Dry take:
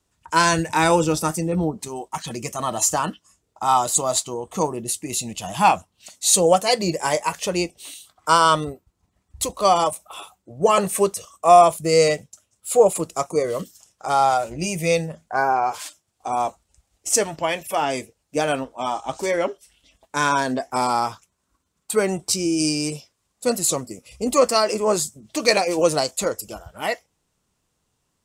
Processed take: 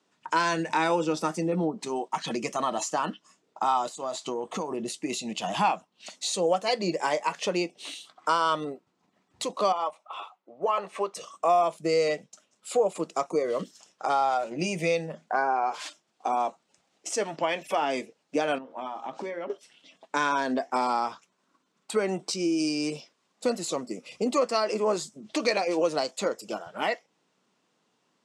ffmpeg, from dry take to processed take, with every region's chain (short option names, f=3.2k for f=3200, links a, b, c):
-filter_complex "[0:a]asettb=1/sr,asplit=3[a][b][c];[a]atrim=end=3.884[d];[b]atrim=start=3.88:end=4.9,asetpts=PTS-STARTPTS,afade=t=in:d=0.004:c=qsin,afade=t=out:st=1.016:d=0.004:c=qsin,asubboost=boost=3.5:cutoff=120,acompressor=threshold=-28dB:ratio=16:attack=3.2:release=140:knee=1:detection=peak[e];[c]atrim=start=4.896[f];[d][e]acrossfade=d=0.004:c1=hsin:c2=qsin[g];[g][f]acrossfade=d=0.004:c1=qsin:c2=hsin,asettb=1/sr,asplit=3[h][i][j];[h]atrim=end=9.724[k];[i]atrim=start=9.72:end=11.15,asetpts=PTS-STARTPTS,afade=t=in:d=0.004:c=qsin,afade=t=out:st=1.426:d=0.004:c=qsin,bandpass=f=1.3k:t=q:w=1.1,equalizer=f=1.6k:t=o:w=0.52:g=-7.5[l];[j]atrim=start=11.146[m];[k][l]acrossfade=d=0.004:c1=hsin:c2=qsin[n];[n][m]acrossfade=d=0.004:c1=qsin:c2=hsin,asettb=1/sr,asplit=3[o][p][q];[o]atrim=end=18.584[r];[p]atrim=start=18.58:end=19.5,asetpts=PTS-STARTPTS,afade=t=in:d=0.004:c=qsin,afade=t=out:st=0.916:d=0.004:c=qsin,bass=f=250:g=3,treble=f=4k:g=-11,acompressor=threshold=-35dB:ratio=10:attack=3.2:release=140:knee=1:detection=peak,bandreject=f=60:t=h:w=6,bandreject=f=120:t=h:w=6,bandreject=f=180:t=h:w=6,bandreject=f=240:t=h:w=6,bandreject=f=300:t=h:w=6,bandreject=f=360:t=h:w=6,bandreject=f=420:t=h:w=6,bandreject=f=480:t=h:w=6,bandreject=f=540:t=h:w=6[s];[q]atrim=start=19.496[t];[r][s]acrossfade=d=0.004:c1=hsin:c2=qsin[u];[u][t]acrossfade=d=0.004:c1=qsin:c2=hsin,highpass=f=190:w=0.5412,highpass=f=190:w=1.3066,acompressor=threshold=-31dB:ratio=2.5,lowpass=4.7k,volume=4dB"